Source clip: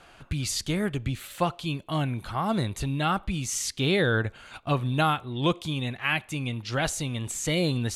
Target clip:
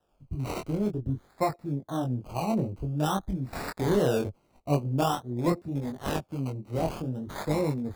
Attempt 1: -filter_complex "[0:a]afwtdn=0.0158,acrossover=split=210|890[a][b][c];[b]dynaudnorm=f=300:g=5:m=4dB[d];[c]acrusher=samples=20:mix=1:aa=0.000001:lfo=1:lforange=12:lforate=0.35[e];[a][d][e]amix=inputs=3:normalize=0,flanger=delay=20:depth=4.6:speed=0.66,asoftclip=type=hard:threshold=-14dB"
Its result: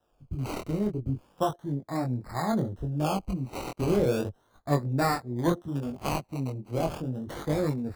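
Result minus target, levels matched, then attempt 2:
decimation with a swept rate: distortion -29 dB
-filter_complex "[0:a]afwtdn=0.0158,acrossover=split=210|890[a][b][c];[b]dynaudnorm=f=300:g=5:m=4dB[d];[c]acrusher=samples=20:mix=1:aa=0.000001:lfo=1:lforange=12:lforate=0.49[e];[a][d][e]amix=inputs=3:normalize=0,flanger=delay=20:depth=4.6:speed=0.66,asoftclip=type=hard:threshold=-14dB"

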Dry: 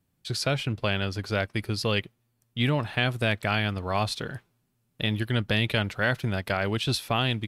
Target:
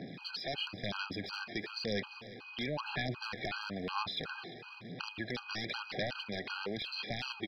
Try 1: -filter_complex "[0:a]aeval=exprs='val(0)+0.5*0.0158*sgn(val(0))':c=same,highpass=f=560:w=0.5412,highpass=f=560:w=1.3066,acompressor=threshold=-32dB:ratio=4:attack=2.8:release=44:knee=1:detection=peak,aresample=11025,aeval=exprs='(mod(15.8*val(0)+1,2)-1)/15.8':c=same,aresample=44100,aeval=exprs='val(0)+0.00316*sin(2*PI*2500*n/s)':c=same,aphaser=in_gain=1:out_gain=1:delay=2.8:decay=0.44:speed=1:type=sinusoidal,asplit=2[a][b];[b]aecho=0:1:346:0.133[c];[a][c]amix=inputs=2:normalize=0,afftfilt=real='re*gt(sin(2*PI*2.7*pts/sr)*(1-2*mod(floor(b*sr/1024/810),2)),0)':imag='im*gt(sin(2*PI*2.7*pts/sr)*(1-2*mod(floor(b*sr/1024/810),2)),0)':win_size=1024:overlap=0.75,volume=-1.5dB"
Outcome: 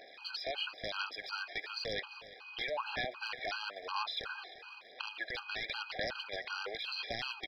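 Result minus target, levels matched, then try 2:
125 Hz band -13.0 dB
-filter_complex "[0:a]aeval=exprs='val(0)+0.5*0.0158*sgn(val(0))':c=same,highpass=f=170:w=0.5412,highpass=f=170:w=1.3066,acompressor=threshold=-32dB:ratio=4:attack=2.8:release=44:knee=1:detection=peak,aresample=11025,aeval=exprs='(mod(15.8*val(0)+1,2)-1)/15.8':c=same,aresample=44100,aeval=exprs='val(0)+0.00316*sin(2*PI*2500*n/s)':c=same,aphaser=in_gain=1:out_gain=1:delay=2.8:decay=0.44:speed=1:type=sinusoidal,asplit=2[a][b];[b]aecho=0:1:346:0.133[c];[a][c]amix=inputs=2:normalize=0,afftfilt=real='re*gt(sin(2*PI*2.7*pts/sr)*(1-2*mod(floor(b*sr/1024/810),2)),0)':imag='im*gt(sin(2*PI*2.7*pts/sr)*(1-2*mod(floor(b*sr/1024/810),2)),0)':win_size=1024:overlap=0.75,volume=-1.5dB"

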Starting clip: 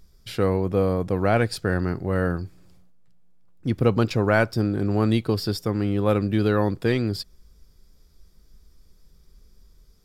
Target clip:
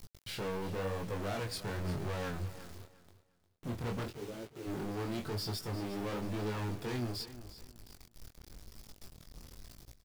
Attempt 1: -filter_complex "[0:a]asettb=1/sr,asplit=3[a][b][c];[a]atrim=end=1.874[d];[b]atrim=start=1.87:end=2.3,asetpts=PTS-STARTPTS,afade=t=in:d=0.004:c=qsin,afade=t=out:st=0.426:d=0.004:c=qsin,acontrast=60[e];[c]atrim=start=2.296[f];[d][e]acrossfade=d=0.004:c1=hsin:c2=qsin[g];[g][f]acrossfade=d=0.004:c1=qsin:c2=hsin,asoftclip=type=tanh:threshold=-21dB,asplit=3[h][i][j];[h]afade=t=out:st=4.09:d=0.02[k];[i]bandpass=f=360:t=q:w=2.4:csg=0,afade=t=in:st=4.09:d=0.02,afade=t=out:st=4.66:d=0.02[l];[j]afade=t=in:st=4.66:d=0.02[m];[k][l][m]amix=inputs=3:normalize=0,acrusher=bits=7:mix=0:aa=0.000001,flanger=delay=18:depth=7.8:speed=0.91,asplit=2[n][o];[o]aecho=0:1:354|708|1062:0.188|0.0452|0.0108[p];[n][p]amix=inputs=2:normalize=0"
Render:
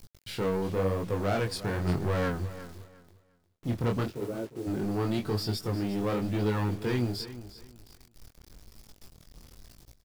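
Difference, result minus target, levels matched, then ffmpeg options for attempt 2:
soft clip: distortion -6 dB
-filter_complex "[0:a]asettb=1/sr,asplit=3[a][b][c];[a]atrim=end=1.874[d];[b]atrim=start=1.87:end=2.3,asetpts=PTS-STARTPTS,afade=t=in:d=0.004:c=qsin,afade=t=out:st=0.426:d=0.004:c=qsin,acontrast=60[e];[c]atrim=start=2.296[f];[d][e]acrossfade=d=0.004:c1=hsin:c2=qsin[g];[g][f]acrossfade=d=0.004:c1=qsin:c2=hsin,asoftclip=type=tanh:threshold=-33dB,asplit=3[h][i][j];[h]afade=t=out:st=4.09:d=0.02[k];[i]bandpass=f=360:t=q:w=2.4:csg=0,afade=t=in:st=4.09:d=0.02,afade=t=out:st=4.66:d=0.02[l];[j]afade=t=in:st=4.66:d=0.02[m];[k][l][m]amix=inputs=3:normalize=0,acrusher=bits=7:mix=0:aa=0.000001,flanger=delay=18:depth=7.8:speed=0.91,asplit=2[n][o];[o]aecho=0:1:354|708|1062:0.188|0.0452|0.0108[p];[n][p]amix=inputs=2:normalize=0"

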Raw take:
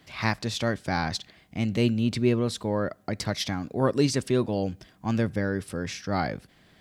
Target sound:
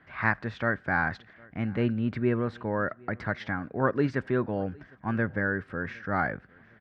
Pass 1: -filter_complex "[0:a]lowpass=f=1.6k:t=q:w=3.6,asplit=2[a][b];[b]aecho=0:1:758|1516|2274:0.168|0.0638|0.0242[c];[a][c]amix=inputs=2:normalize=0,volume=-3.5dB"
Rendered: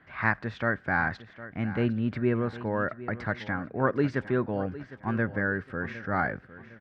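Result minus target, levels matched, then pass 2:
echo-to-direct +10.5 dB
-filter_complex "[0:a]lowpass=f=1.6k:t=q:w=3.6,asplit=2[a][b];[b]aecho=0:1:758|1516:0.0501|0.019[c];[a][c]amix=inputs=2:normalize=0,volume=-3.5dB"

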